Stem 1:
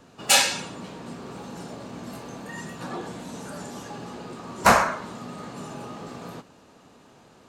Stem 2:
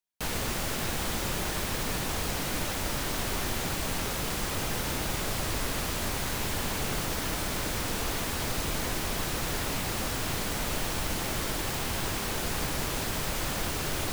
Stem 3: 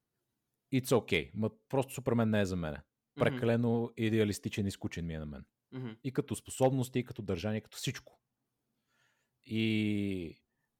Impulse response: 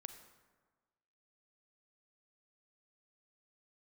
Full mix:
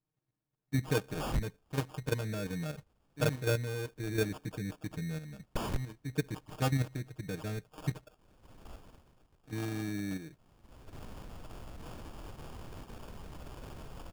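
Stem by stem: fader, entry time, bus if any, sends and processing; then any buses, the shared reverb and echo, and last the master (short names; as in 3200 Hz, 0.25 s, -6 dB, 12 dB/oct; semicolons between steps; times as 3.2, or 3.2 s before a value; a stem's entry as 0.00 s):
-5.0 dB, 0.90 s, no send, bell 1200 Hz +3.5 dB 2.1 oct; Schmitt trigger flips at -16 dBFS
-16.0 dB, 0.65 s, no send, auto duck -24 dB, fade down 0.75 s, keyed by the third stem
-4.0 dB, 0.00 s, no send, comb 6.5 ms, depth 86%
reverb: off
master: low shelf 190 Hz +9 dB; level quantiser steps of 9 dB; sample-and-hold 22×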